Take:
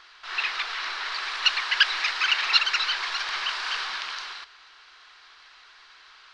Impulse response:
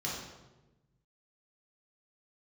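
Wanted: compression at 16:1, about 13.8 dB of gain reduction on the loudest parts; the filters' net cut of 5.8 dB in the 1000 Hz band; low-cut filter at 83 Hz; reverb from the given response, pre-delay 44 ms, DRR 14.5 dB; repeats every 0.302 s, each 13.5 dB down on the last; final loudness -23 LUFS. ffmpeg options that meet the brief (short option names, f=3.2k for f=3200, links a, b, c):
-filter_complex "[0:a]highpass=83,equalizer=f=1k:t=o:g=-8,acompressor=threshold=-29dB:ratio=16,aecho=1:1:302|604:0.211|0.0444,asplit=2[a][b];[1:a]atrim=start_sample=2205,adelay=44[c];[b][c]afir=irnorm=-1:irlink=0,volume=-19dB[d];[a][d]amix=inputs=2:normalize=0,volume=9dB"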